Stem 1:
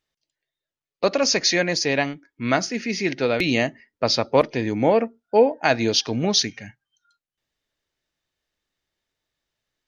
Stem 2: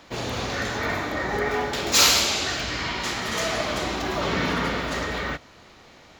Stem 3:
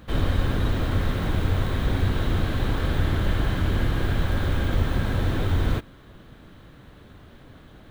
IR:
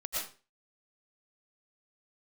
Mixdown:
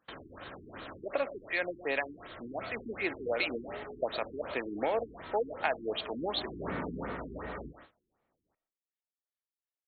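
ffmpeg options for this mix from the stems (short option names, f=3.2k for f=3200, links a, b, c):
-filter_complex "[0:a]highpass=490,acrossover=split=1200[a][b];[a]aeval=exprs='val(0)*(1-0.5/2+0.5/2*cos(2*PI*4.2*n/s))':c=same[c];[b]aeval=exprs='val(0)*(1-0.5/2-0.5/2*cos(2*PI*4.2*n/s))':c=same[d];[c][d]amix=inputs=2:normalize=0,acompressor=threshold=-27dB:ratio=6,volume=-0.5dB,asplit=3[e][f][g];[f]volume=-16.5dB[h];[1:a]lowpass=1.6k,adelay=2350,volume=-10dB,afade=t=in:st=6.23:d=0.41:silence=0.375837,asplit=2[i][j];[j]volume=-17dB[k];[2:a]acompressor=threshold=-26dB:ratio=6,alimiter=level_in=1dB:limit=-24dB:level=0:latency=1:release=19,volume=-1dB,highpass=f=780:p=1,volume=-5dB,asplit=2[l][m];[m]volume=-3.5dB[n];[g]apad=whole_len=348769[o];[l][o]sidechaincompress=threshold=-48dB:ratio=8:attack=16:release=335[p];[3:a]atrim=start_sample=2205[q];[h][k][n]amix=inputs=3:normalize=0[r];[r][q]afir=irnorm=-1:irlink=0[s];[e][i][p][s]amix=inputs=4:normalize=0,agate=range=-18dB:threshold=-52dB:ratio=16:detection=peak,lowshelf=f=190:g=-4,afftfilt=real='re*lt(b*sr/1024,400*pow(4500/400,0.5+0.5*sin(2*PI*2.7*pts/sr)))':imag='im*lt(b*sr/1024,400*pow(4500/400,0.5+0.5*sin(2*PI*2.7*pts/sr)))':win_size=1024:overlap=0.75"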